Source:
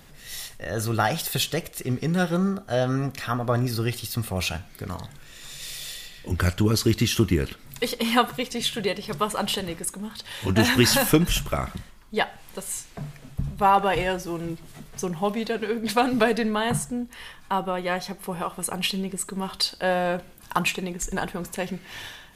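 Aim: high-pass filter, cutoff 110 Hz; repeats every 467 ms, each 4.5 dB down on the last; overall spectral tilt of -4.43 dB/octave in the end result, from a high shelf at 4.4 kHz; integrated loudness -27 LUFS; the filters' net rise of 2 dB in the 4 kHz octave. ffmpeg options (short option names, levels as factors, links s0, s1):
-af "highpass=110,equalizer=f=4000:t=o:g=6.5,highshelf=f=4400:g=-7.5,aecho=1:1:467|934|1401|1868|2335|2802|3269|3736|4203:0.596|0.357|0.214|0.129|0.0772|0.0463|0.0278|0.0167|0.01,volume=0.708"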